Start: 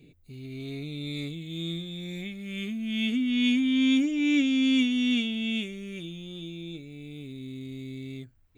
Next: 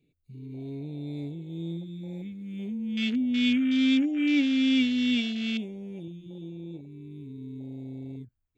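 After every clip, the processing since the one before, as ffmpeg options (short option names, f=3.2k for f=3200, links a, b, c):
-af "afwtdn=0.0178"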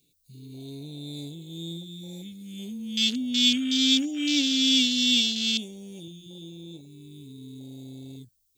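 -af "aexciter=amount=12.5:drive=4.2:freq=3.3k,volume=-3dB"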